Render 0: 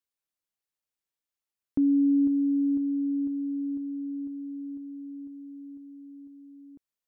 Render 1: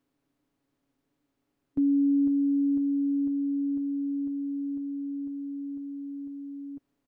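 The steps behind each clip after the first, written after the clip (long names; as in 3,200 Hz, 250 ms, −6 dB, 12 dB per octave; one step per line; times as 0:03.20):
compressor on every frequency bin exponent 0.6
comb filter 7.2 ms
level −5.5 dB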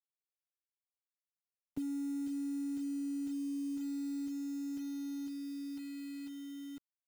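downward compressor 10 to 1, threshold −29 dBFS, peak gain reduction 8 dB
bit reduction 8 bits
level −6.5 dB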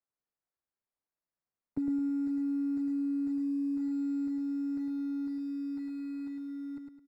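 moving average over 14 samples
repeating echo 106 ms, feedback 37%, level −5 dB
level +5.5 dB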